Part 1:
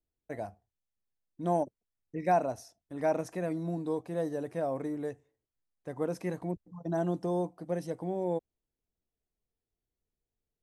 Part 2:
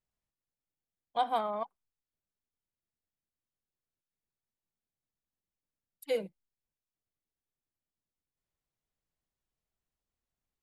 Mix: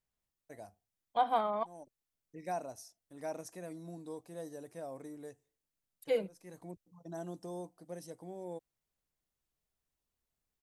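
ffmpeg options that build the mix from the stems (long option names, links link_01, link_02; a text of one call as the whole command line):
ffmpeg -i stem1.wav -i stem2.wav -filter_complex "[0:a]bass=frequency=250:gain=-2,treble=frequency=4000:gain=13,adelay=200,volume=-11.5dB[link_01];[1:a]acrossover=split=2500[link_02][link_03];[link_03]acompressor=threshold=-49dB:ratio=4:attack=1:release=60[link_04];[link_02][link_04]amix=inputs=2:normalize=0,volume=0.5dB,asplit=2[link_05][link_06];[link_06]apad=whole_len=477252[link_07];[link_01][link_07]sidechaincompress=threshold=-56dB:ratio=3:attack=35:release=233[link_08];[link_08][link_05]amix=inputs=2:normalize=0" out.wav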